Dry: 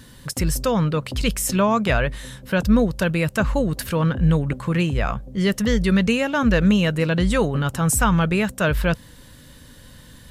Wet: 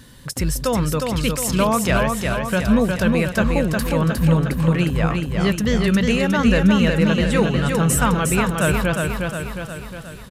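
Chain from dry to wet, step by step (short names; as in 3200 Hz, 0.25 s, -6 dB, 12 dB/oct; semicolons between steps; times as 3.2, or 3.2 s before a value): feedback echo 0.359 s, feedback 56%, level -4 dB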